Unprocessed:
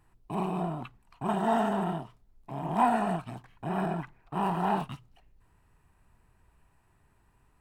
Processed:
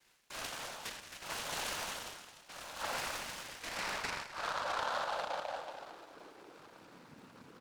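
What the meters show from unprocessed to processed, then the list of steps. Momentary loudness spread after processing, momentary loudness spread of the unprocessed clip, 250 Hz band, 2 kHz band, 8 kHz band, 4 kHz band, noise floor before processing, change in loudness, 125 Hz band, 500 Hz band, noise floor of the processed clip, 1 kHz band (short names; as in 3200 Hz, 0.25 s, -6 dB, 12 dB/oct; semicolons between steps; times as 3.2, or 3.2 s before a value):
20 LU, 16 LU, -23.0 dB, +2.0 dB, +11.5 dB, +8.5 dB, -67 dBFS, -8.5 dB, -22.0 dB, -10.0 dB, -60 dBFS, -9.5 dB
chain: on a send: tapped delay 0.194/0.215/0.266 s -19/-18/-17 dB; on the sum: dynamic EQ 2900 Hz, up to -5 dB, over -49 dBFS, Q 0.76; two-slope reverb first 0.96 s, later 3.2 s, from -20 dB, DRR -2 dB; high-pass sweep 3400 Hz -> 220 Hz, 3.33–7.12; noise vocoder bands 8; reverse; compressor 6:1, threshold -44 dBFS, peak gain reduction 18.5 dB; reverse; noise-modulated delay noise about 2300 Hz, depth 0.053 ms; gain +9 dB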